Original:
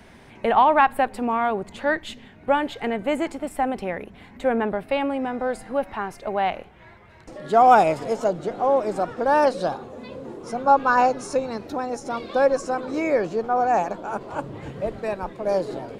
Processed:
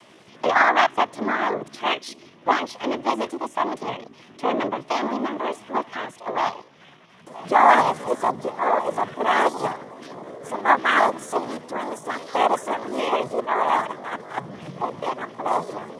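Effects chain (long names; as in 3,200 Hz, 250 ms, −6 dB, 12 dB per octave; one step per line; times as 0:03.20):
cochlear-implant simulation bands 8
pitch shifter +4 semitones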